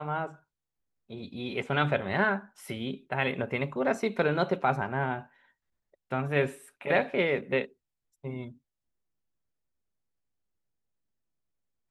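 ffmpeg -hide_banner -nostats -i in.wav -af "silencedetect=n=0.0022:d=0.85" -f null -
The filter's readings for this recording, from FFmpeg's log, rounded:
silence_start: 8.57
silence_end: 11.90 | silence_duration: 3.33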